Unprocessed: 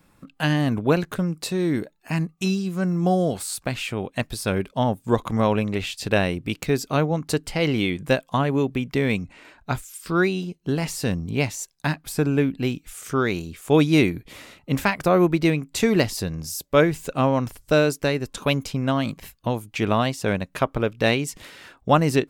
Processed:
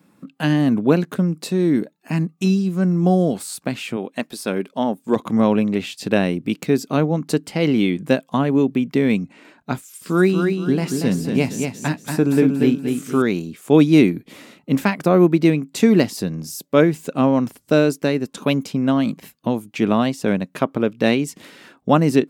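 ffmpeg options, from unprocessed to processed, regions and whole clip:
ffmpeg -i in.wav -filter_complex "[0:a]asettb=1/sr,asplit=3[link_01][link_02][link_03];[link_01]atrim=end=3.964[link_04];[link_02]atrim=start=3.96:end=5.16,asetpts=PTS-STARTPTS,afade=type=in:duration=0.004:curve=qsin,afade=type=out:start_time=1.196:duration=0.004:curve=qsin,equalizer=frequency=110:width=1:gain=-14,asoftclip=type=hard:threshold=-10dB[link_05];[link_03]atrim=start=5.156[link_06];[link_04][link_05]acrossfade=duration=0.004:curve1=hsin:curve2=qsin[link_07];[link_07][link_06]acrossfade=duration=0.004:curve1=qsin:curve2=hsin,asettb=1/sr,asplit=3[link_08][link_09][link_10];[link_08]atrim=end=9.784[link_11];[link_09]atrim=start=9.78:end=13.22,asetpts=PTS-STARTPTS,afade=type=in:duration=0.004:curve=qsin,afade=type=out:start_time=3.436:duration=0.004:curve=qsin,asplit=2[link_12][link_13];[link_13]adelay=16,volume=-13dB[link_14];[link_12][link_14]amix=inputs=2:normalize=0,atrim=end_sample=151704,aecho=1:1:235|470|705|940:0.562|0.186|0.0612|0.0202,atrim=end_sample=151704[link_15];[link_10]atrim=start=13.216[link_16];[link_11][link_15]acrossfade=duration=0.004:curve1=hsin:curve2=qsin[link_17];[link_17][link_16]acrossfade=duration=0.004:curve1=qsin:curve2=hsin,highpass=170,equalizer=frequency=220:width=0.78:gain=10,volume=-1dB" out.wav

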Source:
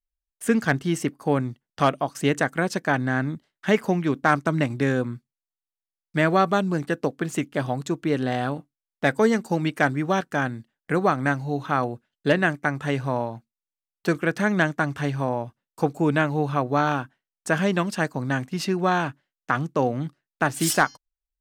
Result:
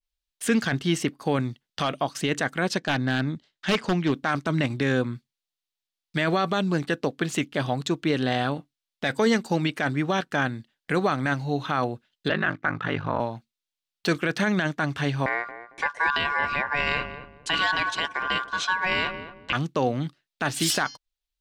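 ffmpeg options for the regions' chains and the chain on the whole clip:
ffmpeg -i in.wav -filter_complex "[0:a]asettb=1/sr,asplit=3[link_01][link_02][link_03];[link_01]atrim=end=2.784[link_04];[link_02]atrim=start=2.78:end=4.12,asetpts=PTS-STARTPTS,afade=type=in:duration=0.004:curve=qsin,afade=type=out:start_time=1.336:duration=0.004:curve=qsin,lowpass=frequency=7900:width=0.5412,lowpass=frequency=7900:width=1.3066,equalizer=frequency=2100:width=0.43:gain=-2.5,aeval=exprs='0.178*(abs(mod(val(0)/0.178+3,4)-2)-1)':channel_layout=same[link_05];[link_03]atrim=start=4.116[link_06];[link_04][link_05]acrossfade=duration=0.004:curve1=hsin:curve2=qsin[link_07];[link_07][link_06]acrossfade=duration=0.004:curve1=qsin:curve2=hsin,asettb=1/sr,asplit=3[link_08][link_09][link_10];[link_08]atrim=end=12.284[link_11];[link_09]atrim=start=12.28:end=13.2,asetpts=PTS-STARTPTS,afade=type=in:duration=0.004:curve=qsin,afade=type=out:start_time=0.916:duration=0.004:curve=qsin,lowpass=3300,equalizer=frequency=1300:width_type=o:width=0.66:gain=8.5,aeval=exprs='val(0)*sin(2*PI*25*n/s)':channel_layout=same[link_12];[link_10]atrim=start=13.196[link_13];[link_11][link_12]acrossfade=duration=0.004:curve1=hsin:curve2=qsin[link_14];[link_14][link_13]acrossfade=duration=0.004:curve1=qsin:curve2=hsin,asettb=1/sr,asplit=3[link_15][link_16][link_17];[link_15]atrim=end=15.264[link_18];[link_16]atrim=start=15.26:end=19.53,asetpts=PTS-STARTPTS,afade=type=in:duration=0.004:curve=qsin,afade=type=out:start_time=4.266:duration=0.004:curve=qsin,lowpass=frequency=7900:width=0.5412,lowpass=frequency=7900:width=1.3066,aeval=exprs='val(0)*sin(2*PI*1300*n/s)':channel_layout=same,asplit=2[link_19][link_20];[link_20]adelay=225,lowpass=frequency=840:poles=1,volume=-9dB,asplit=2[link_21][link_22];[link_22]adelay=225,lowpass=frequency=840:poles=1,volume=0.31,asplit=2[link_23][link_24];[link_24]adelay=225,lowpass=frequency=840:poles=1,volume=0.31,asplit=2[link_25][link_26];[link_26]adelay=225,lowpass=frequency=840:poles=1,volume=0.31[link_27];[link_19][link_21][link_23][link_25][link_27]amix=inputs=5:normalize=0,atrim=end_sample=188307[link_28];[link_17]atrim=start=19.526[link_29];[link_18][link_28]acrossfade=duration=0.004:curve1=hsin:curve2=qsin[link_30];[link_30][link_29]acrossfade=duration=0.004:curve1=qsin:curve2=hsin,equalizer=frequency=3700:width_type=o:width=1.5:gain=11.5,alimiter=limit=-12dB:level=0:latency=1:release=11,adynamicequalizer=threshold=0.0112:dfrequency=2400:dqfactor=0.7:tfrequency=2400:tqfactor=0.7:attack=5:release=100:ratio=0.375:range=2.5:mode=cutabove:tftype=highshelf" out.wav

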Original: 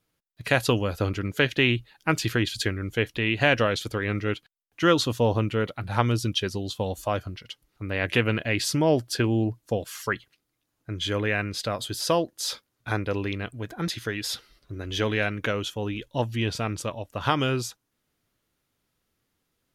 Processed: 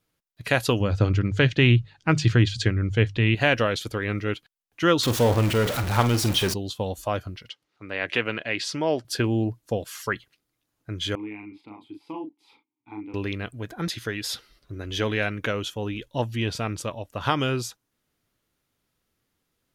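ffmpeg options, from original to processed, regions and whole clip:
ffmpeg -i in.wav -filter_complex "[0:a]asettb=1/sr,asplit=3[link_01][link_02][link_03];[link_01]atrim=end=0.804[link_04];[link_02]atrim=start=0.8:end=3.35,asetpts=PTS-STARTPTS,afade=type=in:duration=0.004:curve=qsin,afade=type=out:start_time=2.546:duration=0.004:curve=qsin,lowpass=frequency=7400:width=0.5412,lowpass=frequency=7400:width=1.3066,equalizer=frequency=110:width=0.81:gain=11,bandreject=frequency=50:width_type=h:width=6,bandreject=frequency=100:width_type=h:width=6,bandreject=frequency=150:width_type=h:width=6[link_05];[link_03]atrim=start=3.346[link_06];[link_04][link_05]acrossfade=duration=0.004:curve1=hsin:curve2=qsin[link_07];[link_07][link_06]acrossfade=duration=0.004:curve1=qsin:curve2=hsin,asettb=1/sr,asplit=3[link_08][link_09][link_10];[link_08]atrim=end=5.034[link_11];[link_09]atrim=start=5.03:end=6.54,asetpts=PTS-STARTPTS,afade=type=in:duration=0.004:curve=qsin,afade=type=out:start_time=1.506:duration=0.004:curve=qsin,aeval=exprs='val(0)+0.5*0.0668*sgn(val(0))':channel_layout=same,asplit=2[link_12][link_13];[link_13]adelay=47,volume=-12dB[link_14];[link_12][link_14]amix=inputs=2:normalize=0,atrim=end_sample=66591[link_15];[link_10]atrim=start=6.536[link_16];[link_11][link_15]acrossfade=duration=0.004:curve1=hsin:curve2=qsin[link_17];[link_17][link_16]acrossfade=duration=0.004:curve1=qsin:curve2=hsin,asettb=1/sr,asplit=3[link_18][link_19][link_20];[link_18]atrim=end=7.494[link_21];[link_19]atrim=start=7.49:end=9.05,asetpts=PTS-STARTPTS,afade=type=in:duration=0.004:curve=qsin,afade=type=out:start_time=1.556:duration=0.004:curve=qsin,highpass=100,lowpass=5600,lowshelf=frequency=240:gain=-12[link_22];[link_20]atrim=start=9.046[link_23];[link_21][link_22]acrossfade=duration=0.004:curve1=hsin:curve2=qsin[link_24];[link_24][link_23]acrossfade=duration=0.004:curve1=qsin:curve2=hsin,asettb=1/sr,asplit=3[link_25][link_26][link_27];[link_25]atrim=end=11.154[link_28];[link_26]atrim=start=11.15:end=13.14,asetpts=PTS-STARTPTS,afade=type=in:duration=0.004:curve=qsin,afade=type=out:start_time=1.986:duration=0.004:curve=qsin,asplit=3[link_29][link_30][link_31];[link_29]bandpass=frequency=300:width_type=q:width=8,volume=0dB[link_32];[link_30]bandpass=frequency=870:width_type=q:width=8,volume=-6dB[link_33];[link_31]bandpass=frequency=2240:width_type=q:width=8,volume=-9dB[link_34];[link_32][link_33][link_34]amix=inputs=3:normalize=0,equalizer=frequency=6300:width_type=o:width=1:gain=-13,asplit=2[link_35][link_36];[link_36]adelay=38,volume=-4dB[link_37];[link_35][link_37]amix=inputs=2:normalize=0,atrim=end_sample=87759[link_38];[link_27]atrim=start=13.136[link_39];[link_28][link_38]acrossfade=duration=0.004:curve1=hsin:curve2=qsin[link_40];[link_40][link_39]acrossfade=duration=0.004:curve1=qsin:curve2=hsin" out.wav

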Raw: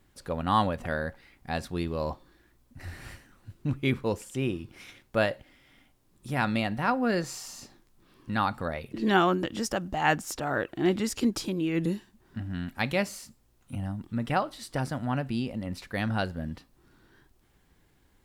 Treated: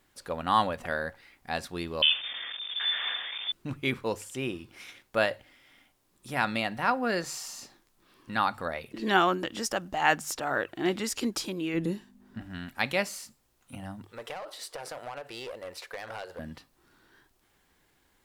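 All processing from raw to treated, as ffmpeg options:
ffmpeg -i in.wav -filter_complex "[0:a]asettb=1/sr,asplit=3[link_01][link_02][link_03];[link_01]atrim=end=2.024[link_04];[link_02]atrim=start=2.02:end=3.52,asetpts=PTS-STARTPTS,afade=type=in:duration=0.004:curve=qsin,afade=type=out:start_time=1.496:duration=0.004:curve=qsin,aeval=exprs='val(0)+0.5*0.00944*sgn(val(0))':channel_layout=same,acontrast=63,lowpass=frequency=3100:width_type=q:width=0.5098,lowpass=frequency=3100:width_type=q:width=0.6013,lowpass=frequency=3100:width_type=q:width=0.9,lowpass=frequency=3100:width_type=q:width=2.563,afreqshift=-3600[link_05];[link_03]atrim=start=3.516[link_06];[link_04][link_05]acrossfade=duration=0.004:curve1=hsin:curve2=qsin[link_07];[link_07][link_06]acrossfade=duration=0.004:curve1=qsin:curve2=hsin,asettb=1/sr,asplit=3[link_08][link_09][link_10];[link_08]atrim=end=11.744[link_11];[link_09]atrim=start=11.74:end=12.41,asetpts=PTS-STARTPTS,afade=type=in:duration=0.004:curve=qsin,afade=type=out:start_time=0.666:duration=0.004:curve=qsin,tiltshelf=frequency=730:gain=4,aeval=exprs='val(0)+0.01*(sin(2*PI*50*n/s)+sin(2*PI*2*50*n/s)/2+sin(2*PI*3*50*n/s)/3+sin(2*PI*4*50*n/s)/4+sin(2*PI*5*50*n/s)/5)':channel_layout=same[link_12];[link_10]atrim=start=12.406[link_13];[link_11][link_12]acrossfade=duration=0.004:curve1=hsin:curve2=qsin[link_14];[link_14][link_13]acrossfade=duration=0.004:curve1=qsin:curve2=hsin,asettb=1/sr,asplit=3[link_15][link_16][link_17];[link_15]atrim=end=14.054[link_18];[link_16]atrim=start=14.05:end=16.39,asetpts=PTS-STARTPTS,afade=type=in:duration=0.004:curve=qsin,afade=type=out:start_time=2.336:duration=0.004:curve=qsin,lowshelf=frequency=320:width_type=q:width=3:gain=-12,acompressor=threshold=-31dB:ratio=16:attack=3.2:release=140:knee=1:detection=peak,aeval=exprs='clip(val(0),-1,0.015)':channel_layout=same[link_19];[link_17]atrim=start=16.386[link_20];[link_18][link_19]acrossfade=duration=0.004:curve1=hsin:curve2=qsin[link_21];[link_21][link_20]acrossfade=duration=0.004:curve1=qsin:curve2=hsin,lowshelf=frequency=330:gain=-11,bandreject=frequency=50:width_type=h:width=6,bandreject=frequency=100:width_type=h:width=6,bandreject=frequency=150:width_type=h:width=6,volume=2dB" out.wav

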